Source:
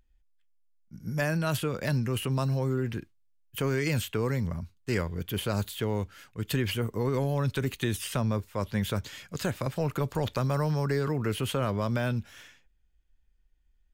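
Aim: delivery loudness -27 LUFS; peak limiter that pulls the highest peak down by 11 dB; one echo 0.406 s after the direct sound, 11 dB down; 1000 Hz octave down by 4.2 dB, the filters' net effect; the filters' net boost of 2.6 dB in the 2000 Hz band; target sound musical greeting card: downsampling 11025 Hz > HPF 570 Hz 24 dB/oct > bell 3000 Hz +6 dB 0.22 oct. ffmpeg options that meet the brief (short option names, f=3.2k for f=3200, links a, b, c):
-af "equalizer=f=1k:t=o:g=-7,equalizer=f=2k:t=o:g=5,alimiter=level_in=2.5dB:limit=-24dB:level=0:latency=1,volume=-2.5dB,aecho=1:1:406:0.282,aresample=11025,aresample=44100,highpass=f=570:w=0.5412,highpass=f=570:w=1.3066,equalizer=f=3k:t=o:w=0.22:g=6,volume=13.5dB"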